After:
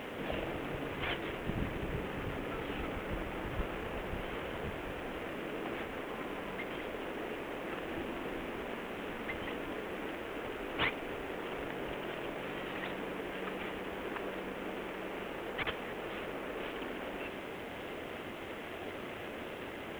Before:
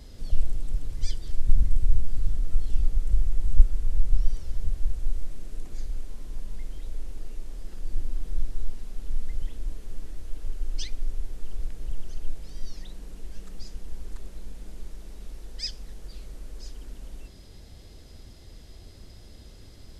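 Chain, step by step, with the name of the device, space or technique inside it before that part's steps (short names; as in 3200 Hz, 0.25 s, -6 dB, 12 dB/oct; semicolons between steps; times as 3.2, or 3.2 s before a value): army field radio (BPF 360–2800 Hz; CVSD 16 kbps; white noise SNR 25 dB); gain +17 dB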